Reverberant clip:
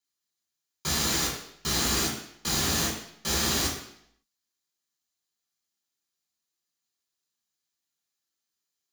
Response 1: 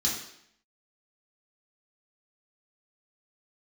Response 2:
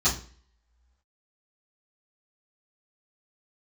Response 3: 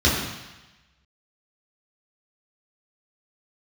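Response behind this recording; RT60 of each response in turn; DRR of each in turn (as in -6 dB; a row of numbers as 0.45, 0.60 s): 1; 0.70, 0.45, 1.0 s; -5.5, -13.0, -7.5 dB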